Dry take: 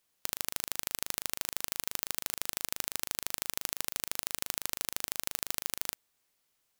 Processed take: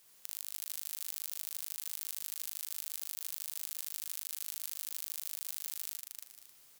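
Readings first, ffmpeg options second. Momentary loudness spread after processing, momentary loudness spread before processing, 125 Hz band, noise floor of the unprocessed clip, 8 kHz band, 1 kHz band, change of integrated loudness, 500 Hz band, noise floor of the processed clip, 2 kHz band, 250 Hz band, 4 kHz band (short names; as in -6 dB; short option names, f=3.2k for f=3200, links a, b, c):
3 LU, 1 LU, under -20 dB, -77 dBFS, -5.5 dB, -17.5 dB, -5.0 dB, under -15 dB, -62 dBFS, -14.5 dB, under -15 dB, -8.5 dB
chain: -af "highshelf=f=4.3k:g=6.5,acompressor=threshold=-39dB:ratio=6,aeval=exprs='(tanh(8.91*val(0)+0.4)-tanh(0.4))/8.91':c=same,aecho=1:1:59|77|296|496|564:0.708|0.316|0.708|0.211|0.178,volume=9dB"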